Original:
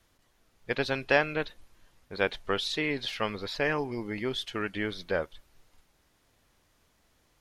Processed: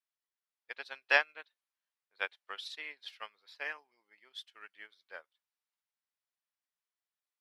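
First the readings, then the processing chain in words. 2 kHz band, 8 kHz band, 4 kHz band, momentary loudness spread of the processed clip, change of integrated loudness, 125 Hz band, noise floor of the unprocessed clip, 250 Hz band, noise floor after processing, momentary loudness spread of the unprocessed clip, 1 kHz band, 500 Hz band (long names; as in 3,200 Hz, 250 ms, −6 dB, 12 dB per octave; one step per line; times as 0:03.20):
−3.5 dB, −13.0 dB, −9.0 dB, 23 LU, −5.0 dB, below −40 dB, −69 dBFS, −30.5 dB, below −85 dBFS, 9 LU, −8.0 dB, −15.0 dB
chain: high-pass filter 1,000 Hz 12 dB per octave
notch filter 6,500 Hz, Q 13
expander for the loud parts 2.5 to 1, over −43 dBFS
level +2.5 dB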